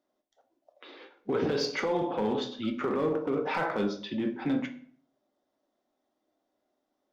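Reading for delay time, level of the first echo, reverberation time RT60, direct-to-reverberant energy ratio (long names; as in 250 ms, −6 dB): no echo audible, no echo audible, 0.55 s, 5.0 dB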